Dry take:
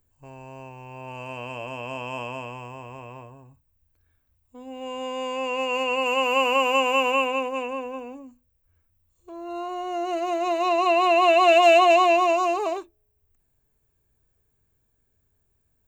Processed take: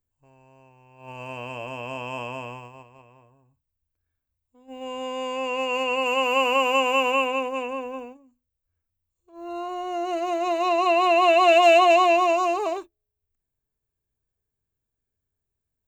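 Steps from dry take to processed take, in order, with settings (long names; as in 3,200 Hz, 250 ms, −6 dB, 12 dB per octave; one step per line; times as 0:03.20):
noise gate −37 dBFS, range −13 dB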